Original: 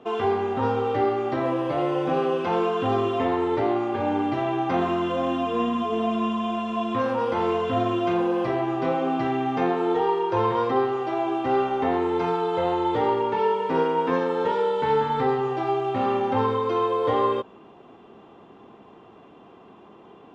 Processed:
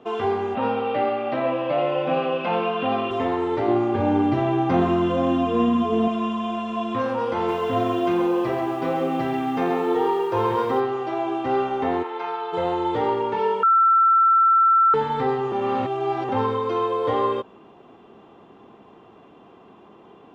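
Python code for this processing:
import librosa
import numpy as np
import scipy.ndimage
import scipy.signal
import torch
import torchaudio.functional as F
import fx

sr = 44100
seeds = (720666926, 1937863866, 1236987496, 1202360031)

y = fx.cabinet(x, sr, low_hz=140.0, low_slope=24, high_hz=4500.0, hz=(210.0, 380.0, 590.0, 2600.0), db=(5, -10, 9, 9), at=(0.55, 3.11))
y = fx.low_shelf(y, sr, hz=340.0, db=9.5, at=(3.68, 6.08))
y = fx.echo_crushed(y, sr, ms=134, feedback_pct=35, bits=8, wet_db=-7, at=(7.35, 10.8))
y = fx.bandpass_edges(y, sr, low_hz=670.0, high_hz=3900.0, at=(12.02, 12.52), fade=0.02)
y = fx.edit(y, sr, fx.bleep(start_s=13.63, length_s=1.31, hz=1340.0, db=-13.0),
    fx.reverse_span(start_s=15.52, length_s=0.77), tone=tone)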